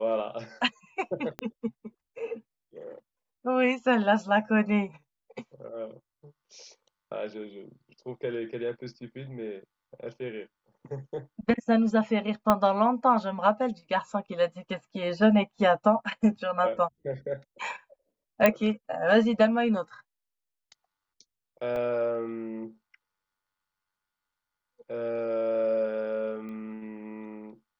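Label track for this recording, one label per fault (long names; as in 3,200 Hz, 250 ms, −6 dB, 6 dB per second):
1.390000	1.390000	click −19 dBFS
12.500000	12.500000	click −9 dBFS
18.460000	18.460000	click −7 dBFS
21.760000	21.760000	drop-out 2.5 ms
26.490000	26.490000	click −32 dBFS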